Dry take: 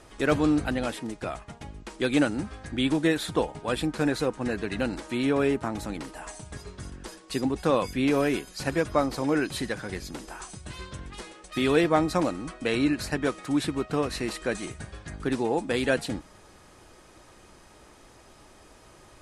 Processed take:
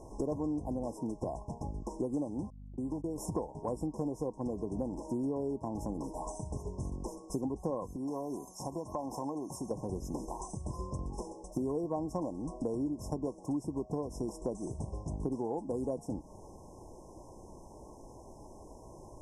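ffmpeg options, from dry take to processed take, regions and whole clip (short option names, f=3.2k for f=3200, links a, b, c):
-filter_complex "[0:a]asettb=1/sr,asplit=3[a][b][c];[a]atrim=end=2.504[d];[b]atrim=start=2.5:end=3.18,asetpts=PTS-STARTPTS,afade=t=in:d=0.004:c=qsin,afade=t=out:st=0.676:d=0.004:c=qsin,agate=range=-43dB:threshold=-30dB:ratio=16:release=100:detection=peak,acompressor=threshold=-44dB:ratio=2:attack=3.2:release=140:knee=1:detection=peak,aeval=exprs='val(0)+0.00316*(sin(2*PI*50*n/s)+sin(2*PI*2*50*n/s)/2+sin(2*PI*3*50*n/s)/3+sin(2*PI*4*50*n/s)/4+sin(2*PI*5*50*n/s)/5)':c=same[e];[c]atrim=start=3.176[f];[d][e]acrossfade=d=0.004:c1=hsin:c2=qsin[g];[g][f]acrossfade=d=0.004:c1=qsin:c2=hsin,asettb=1/sr,asplit=3[h][i][j];[h]atrim=end=7.964[k];[i]atrim=start=7.96:end=9.71,asetpts=PTS-STARTPTS,afade=t=in:d=0.004:c=qsin,afade=t=out:st=1.746:d=0.004:c=qsin,highpass=f=430:p=1,acompressor=threshold=-35dB:ratio=2.5:attack=3.2:release=140:knee=1:detection=peak,aecho=1:1:1.1:0.4,atrim=end_sample=77175[l];[j]atrim=start=9.706[m];[k][l]acrossfade=d=0.004:c1=hsin:c2=qsin[n];[n][m]acrossfade=d=0.004:c1=qsin:c2=hsin,afftfilt=real='re*(1-between(b*sr/4096,1100,5100))':imag='im*(1-between(b*sr/4096,1100,5100))':win_size=4096:overlap=0.75,highshelf=f=2.7k:g=-9,acompressor=threshold=-36dB:ratio=6,volume=3.5dB"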